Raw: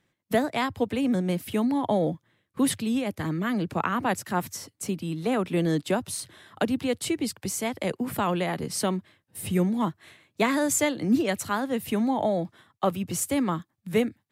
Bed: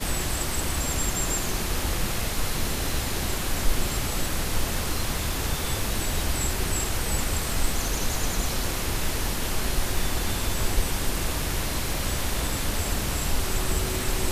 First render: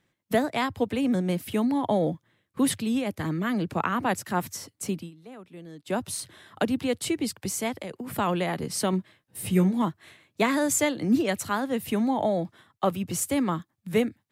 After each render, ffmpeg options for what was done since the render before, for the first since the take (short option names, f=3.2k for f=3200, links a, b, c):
-filter_complex "[0:a]asettb=1/sr,asplit=3[a][b][c];[a]atrim=end=7.764[d];[b]atrim=start=7.76:end=8.17,asetpts=PTS-STARTPTS,afade=t=in:d=0.004:c=qsin,afade=t=out:st=0.406:d=0.004:c=qsin,acompressor=threshold=-32dB:ratio=6:attack=3.2:release=140:knee=1:detection=peak[e];[c]atrim=start=8.166[f];[d][e]acrossfade=d=0.004:c1=hsin:c2=qsin[g];[g][f]acrossfade=d=0.004:c1=qsin:c2=hsin,asettb=1/sr,asplit=3[h][i][j];[h]atrim=end=8.914[k];[i]atrim=start=8.91:end=9.82,asetpts=PTS-STARTPTS,afade=t=in:d=0.004:c=qsin,afade=t=out:st=0.906:d=0.004:c=qsin,asplit=2[l][m];[m]adelay=16,volume=-6dB[n];[l][n]amix=inputs=2:normalize=0,atrim=end_sample=40131[o];[j]atrim=start=9.816[p];[k][o]acrossfade=d=0.004:c1=hsin:c2=qsin[q];[q][p]acrossfade=d=0.004:c1=qsin:c2=hsin,asplit=3[r][s][t];[r]atrim=end=5.11,asetpts=PTS-STARTPTS,afade=t=out:st=4.97:d=0.14:silence=0.112202[u];[s]atrim=start=5.11:end=5.84,asetpts=PTS-STARTPTS,volume=-19dB[v];[t]atrim=start=5.84,asetpts=PTS-STARTPTS,afade=t=in:d=0.14:silence=0.112202[w];[u][v][w]concat=n=3:v=0:a=1"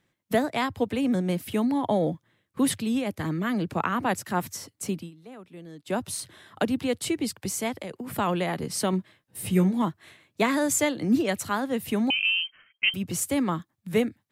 -filter_complex "[0:a]asettb=1/sr,asplit=3[a][b][c];[a]atrim=end=12.104[d];[b]atrim=start=12.1:end=12.94,asetpts=PTS-STARTPTS,afade=t=in:d=0.004:c=qsin,afade=t=out:st=0.836:d=0.004:c=qsin,lowpass=f=2.8k:t=q:w=0.5098,lowpass=f=2.8k:t=q:w=0.6013,lowpass=f=2.8k:t=q:w=0.9,lowpass=f=2.8k:t=q:w=2.563,afreqshift=-3300[e];[c]atrim=start=12.936[f];[d][e]acrossfade=d=0.004:c1=hsin:c2=qsin[g];[g][f]acrossfade=d=0.004:c1=qsin:c2=hsin"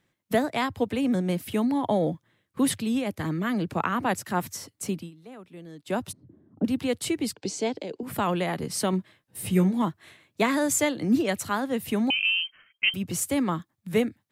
-filter_complex "[0:a]asplit=3[a][b][c];[a]afade=t=out:st=6.11:d=0.02[d];[b]lowpass=f=270:t=q:w=2.5,afade=t=in:st=6.11:d=0.02,afade=t=out:st=6.64:d=0.02[e];[c]afade=t=in:st=6.64:d=0.02[f];[d][e][f]amix=inputs=3:normalize=0,asettb=1/sr,asplit=3[g][h][i];[g]atrim=end=7.344[j];[h]atrim=start=7.34:end=8.03,asetpts=PTS-STARTPTS,afade=t=in:d=0.004:c=qsin,afade=t=out:st=0.686:d=0.004:c=qsin,highpass=170,equalizer=f=300:t=q:w=4:g=6,equalizer=f=440:t=q:w=4:g=7,equalizer=f=1.2k:t=q:w=4:g=-10,equalizer=f=1.9k:t=q:w=4:g=-7,equalizer=f=4.4k:t=q:w=4:g=5,lowpass=f=6.9k:w=0.5412,lowpass=f=6.9k:w=1.3066[k];[i]atrim=start=8.026[l];[j][k]acrossfade=d=0.004:c1=hsin:c2=qsin[m];[m][l]acrossfade=d=0.004:c1=qsin:c2=hsin"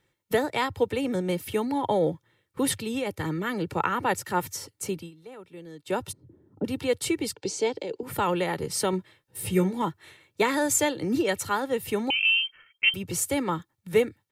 -af "aecho=1:1:2.2:0.55"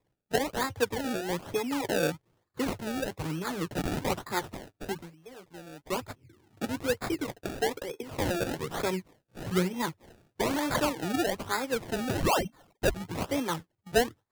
-af "flanger=delay=6.3:depth=2.7:regen=-45:speed=0.54:shape=triangular,acrusher=samples=29:mix=1:aa=0.000001:lfo=1:lforange=29:lforate=1.1"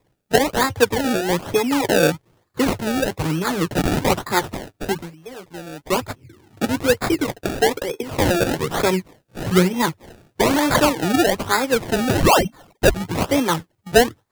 -af "volume=11.5dB,alimiter=limit=-3dB:level=0:latency=1"